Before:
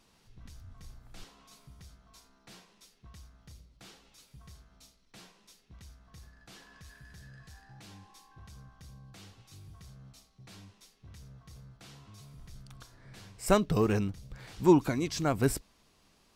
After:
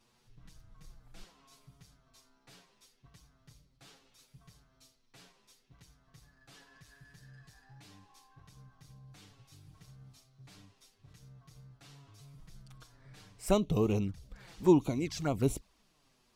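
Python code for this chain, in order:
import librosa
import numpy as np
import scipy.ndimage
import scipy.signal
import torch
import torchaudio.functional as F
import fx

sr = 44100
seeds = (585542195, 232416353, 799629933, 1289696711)

y = fx.reverse_delay(x, sr, ms=331, wet_db=-12.5, at=(8.53, 11.13))
y = fx.env_flanger(y, sr, rest_ms=8.6, full_db=-24.5)
y = y * 10.0 ** (-1.5 / 20.0)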